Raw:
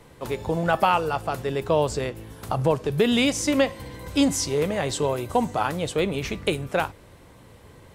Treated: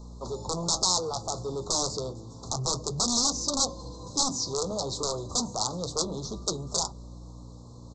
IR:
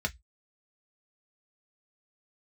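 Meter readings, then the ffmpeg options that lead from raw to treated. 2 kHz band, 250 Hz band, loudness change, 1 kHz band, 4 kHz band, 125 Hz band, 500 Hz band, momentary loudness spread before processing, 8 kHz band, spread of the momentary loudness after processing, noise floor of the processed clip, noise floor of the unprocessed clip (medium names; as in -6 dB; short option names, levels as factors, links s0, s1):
under -25 dB, -10.5 dB, -4.0 dB, -8.5 dB, +2.0 dB, -6.5 dB, -10.0 dB, 9 LU, +6.5 dB, 18 LU, -45 dBFS, -50 dBFS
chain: -filter_complex "[0:a]acrossover=split=4600[s0][s1];[s1]acompressor=threshold=0.00631:ratio=4:attack=1:release=60[s2];[s0][s2]amix=inputs=2:normalize=0,highshelf=f=2400:g=-7.5,bandreject=f=50:t=h:w=6,bandreject=f=100:t=h:w=6,bandreject=f=150:t=h:w=6,bandreject=f=200:t=h:w=6,bandreject=f=250:t=h:w=6,bandreject=f=300:t=h:w=6,bandreject=f=350:t=h:w=6,acrossover=split=120[s3][s4];[s4]aeval=exprs='(mod(6.68*val(0)+1,2)-1)/6.68':c=same[s5];[s3][s5]amix=inputs=2:normalize=0,aeval=exprs='val(0)+0.0126*(sin(2*PI*60*n/s)+sin(2*PI*2*60*n/s)/2+sin(2*PI*3*60*n/s)/3+sin(2*PI*4*60*n/s)/4+sin(2*PI*5*60*n/s)/5)':c=same,flanger=delay=4.8:depth=5.1:regen=-60:speed=0.3:shape=sinusoidal,aresample=16000,asoftclip=type=tanh:threshold=0.0398,aresample=44100,crystalizer=i=7.5:c=0,asuperstop=centerf=2200:order=12:qfactor=0.8"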